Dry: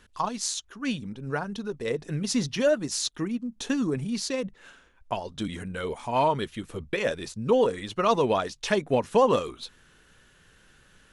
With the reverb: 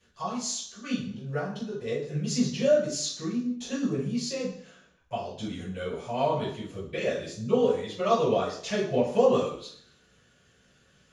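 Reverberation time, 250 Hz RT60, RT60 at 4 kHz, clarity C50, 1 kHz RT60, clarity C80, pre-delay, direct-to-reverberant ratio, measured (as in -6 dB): 0.60 s, 0.65 s, 0.70 s, 5.0 dB, 0.60 s, 9.0 dB, 3 ms, -11.5 dB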